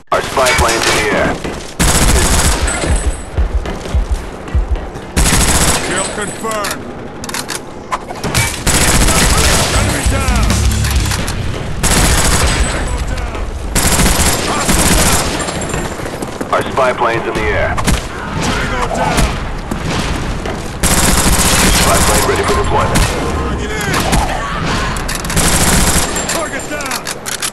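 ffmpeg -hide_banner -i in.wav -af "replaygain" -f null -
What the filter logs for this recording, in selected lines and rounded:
track_gain = -4.2 dB
track_peak = 0.476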